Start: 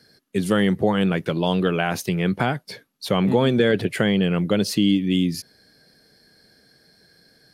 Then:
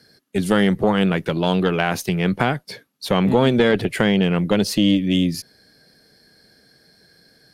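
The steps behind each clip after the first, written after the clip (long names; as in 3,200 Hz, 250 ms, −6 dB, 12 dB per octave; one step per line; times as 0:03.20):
harmonic generator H 2 −12 dB, 5 −31 dB, 7 −36 dB, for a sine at −6 dBFS
level +1.5 dB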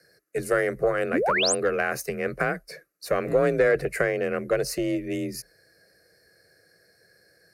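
frequency shifter +35 Hz
phaser with its sweep stopped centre 900 Hz, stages 6
sound drawn into the spectrogram rise, 0:01.13–0:01.55, 210–10,000 Hz −22 dBFS
level −2 dB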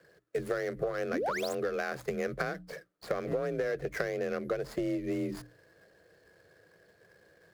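running median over 15 samples
mains-hum notches 60/120/180/240/300 Hz
downward compressor 10 to 1, threshold −31 dBFS, peak gain reduction 15 dB
level +2 dB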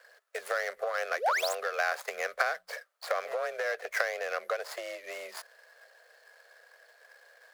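inverse Chebyshev high-pass filter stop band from 310 Hz, stop band 40 dB
level +7 dB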